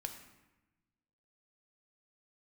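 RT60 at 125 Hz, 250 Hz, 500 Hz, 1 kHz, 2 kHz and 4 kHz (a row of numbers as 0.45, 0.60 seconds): 1.6, 1.5, 1.0, 1.0, 1.0, 0.75 seconds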